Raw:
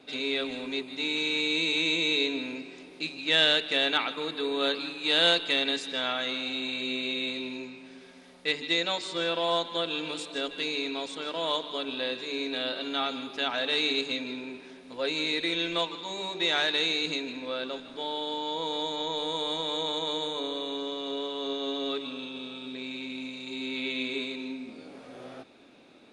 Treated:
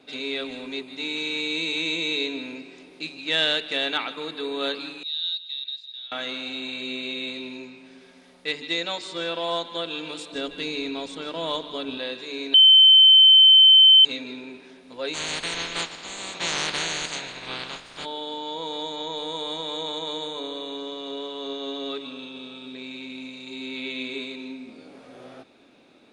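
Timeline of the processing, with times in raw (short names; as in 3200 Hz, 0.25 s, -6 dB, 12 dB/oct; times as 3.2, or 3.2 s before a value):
5.03–6.12 band-pass 3800 Hz, Q 15
10.32–11.98 low shelf 220 Hz +11.5 dB
12.54–14.05 bleep 3080 Hz -9 dBFS
15.13–18.04 spectral limiter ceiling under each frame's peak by 29 dB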